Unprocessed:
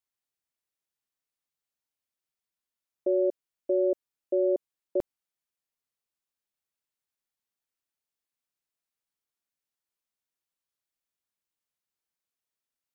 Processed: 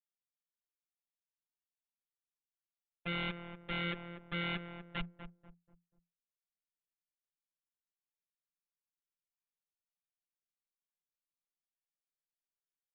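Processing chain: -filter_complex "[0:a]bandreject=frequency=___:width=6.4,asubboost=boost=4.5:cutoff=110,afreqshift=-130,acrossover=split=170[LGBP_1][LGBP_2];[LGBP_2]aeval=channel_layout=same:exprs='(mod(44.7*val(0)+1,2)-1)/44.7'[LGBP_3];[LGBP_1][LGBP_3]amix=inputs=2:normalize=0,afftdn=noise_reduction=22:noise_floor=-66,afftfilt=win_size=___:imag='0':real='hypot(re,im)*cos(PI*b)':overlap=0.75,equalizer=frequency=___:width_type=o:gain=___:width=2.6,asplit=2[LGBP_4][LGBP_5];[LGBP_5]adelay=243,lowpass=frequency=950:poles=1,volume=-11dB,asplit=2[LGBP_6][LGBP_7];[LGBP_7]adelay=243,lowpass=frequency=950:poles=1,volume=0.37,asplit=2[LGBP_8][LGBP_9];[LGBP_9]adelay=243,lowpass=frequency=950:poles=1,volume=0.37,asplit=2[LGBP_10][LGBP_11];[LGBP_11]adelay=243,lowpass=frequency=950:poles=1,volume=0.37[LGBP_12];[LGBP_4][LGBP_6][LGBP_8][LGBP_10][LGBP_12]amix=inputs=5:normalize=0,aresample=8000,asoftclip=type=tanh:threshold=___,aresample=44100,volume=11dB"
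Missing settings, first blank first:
550, 1024, 570, -7, -36.5dB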